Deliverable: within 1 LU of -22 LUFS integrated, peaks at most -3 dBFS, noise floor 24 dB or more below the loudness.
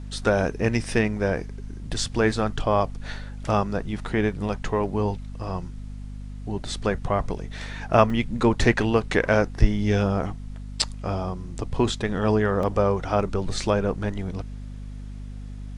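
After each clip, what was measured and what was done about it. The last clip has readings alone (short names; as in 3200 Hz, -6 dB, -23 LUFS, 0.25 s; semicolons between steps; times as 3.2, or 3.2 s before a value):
dropouts 2; longest dropout 2.8 ms; hum 50 Hz; harmonics up to 250 Hz; hum level -33 dBFS; loudness -25.0 LUFS; peak -2.5 dBFS; loudness target -22.0 LUFS
-> interpolate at 8.1/12.63, 2.8 ms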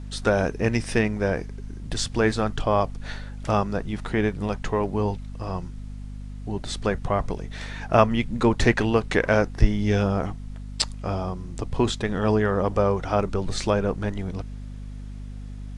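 dropouts 0; hum 50 Hz; harmonics up to 250 Hz; hum level -33 dBFS
-> de-hum 50 Hz, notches 5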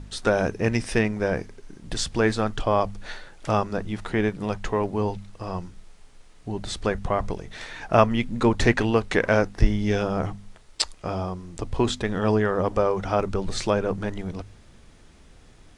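hum none; loudness -25.0 LUFS; peak -2.5 dBFS; loudness target -22.0 LUFS
-> gain +3 dB; limiter -3 dBFS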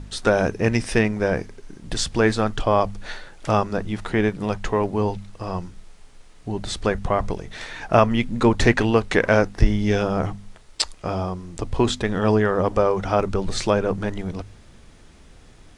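loudness -22.5 LUFS; peak -3.0 dBFS; noise floor -48 dBFS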